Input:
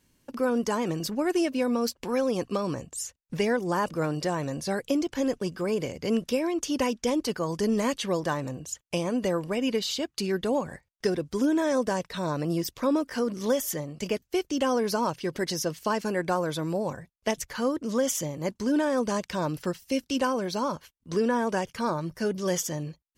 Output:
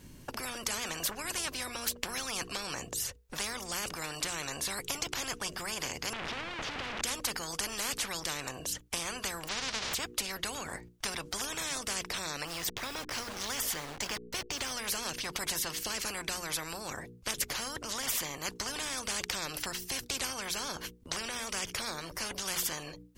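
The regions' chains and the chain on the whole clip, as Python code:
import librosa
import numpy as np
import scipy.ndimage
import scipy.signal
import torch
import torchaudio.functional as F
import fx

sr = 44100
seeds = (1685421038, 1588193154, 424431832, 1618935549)

y = fx.chain(x, sr, fx.clip_1bit(),
    fx.lowpass(hz=1400.0, slope=12), at=(6.13, 7.02))
y = fx.envelope_flatten(y, sr, power=0.1, at=(9.47, 9.93), fade=0.02)
y = fx.lowpass(y, sr, hz=4200.0, slope=24, at=(9.47, 9.93), fade=0.02)
y = fx.chain(y, sr, fx.delta_hold(step_db=-45.0),
    fx.high_shelf(hz=7700.0, db=-9.5), at=(12.47, 14.72))
y = fx.low_shelf(y, sr, hz=450.0, db=8.0)
y = fx.hum_notches(y, sr, base_hz=60, count=8)
y = fx.spectral_comp(y, sr, ratio=10.0)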